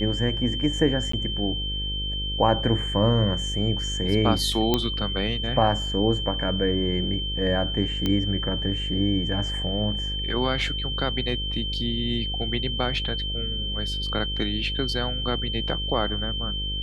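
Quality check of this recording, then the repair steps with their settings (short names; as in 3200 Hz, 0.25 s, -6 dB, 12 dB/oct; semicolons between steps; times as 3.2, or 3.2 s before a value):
buzz 50 Hz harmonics 11 -31 dBFS
tone 3100 Hz -29 dBFS
1.12–1.13 gap 14 ms
4.74 pop -7 dBFS
8.06 pop -12 dBFS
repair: de-click; de-hum 50 Hz, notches 11; notch 3100 Hz, Q 30; interpolate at 1.12, 14 ms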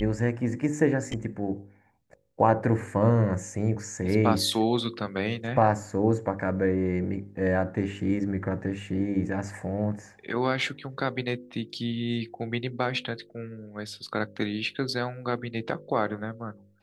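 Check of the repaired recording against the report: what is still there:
none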